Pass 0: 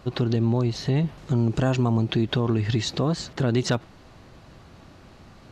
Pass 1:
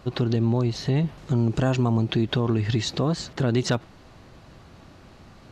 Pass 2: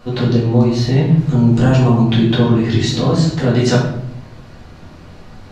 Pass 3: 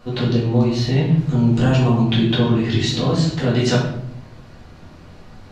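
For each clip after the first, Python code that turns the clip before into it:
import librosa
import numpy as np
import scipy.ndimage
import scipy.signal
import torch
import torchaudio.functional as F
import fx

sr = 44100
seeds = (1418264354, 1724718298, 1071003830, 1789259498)

y1 = x
y2 = fx.room_shoebox(y1, sr, seeds[0], volume_m3=150.0, walls='mixed', distance_m=1.9)
y2 = y2 * librosa.db_to_amplitude(1.5)
y3 = fx.dynamic_eq(y2, sr, hz=3000.0, q=1.4, threshold_db=-39.0, ratio=4.0, max_db=5)
y3 = y3 * librosa.db_to_amplitude(-4.0)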